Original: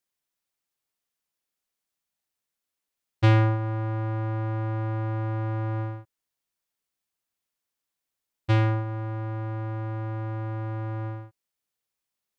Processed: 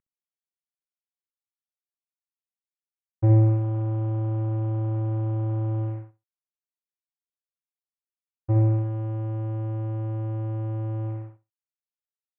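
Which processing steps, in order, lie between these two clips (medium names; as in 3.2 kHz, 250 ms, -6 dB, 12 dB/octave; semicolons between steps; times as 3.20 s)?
CVSD coder 16 kbps; low-pass 1.1 kHz 12 dB/octave; feedback delay 64 ms, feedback 16%, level -7 dB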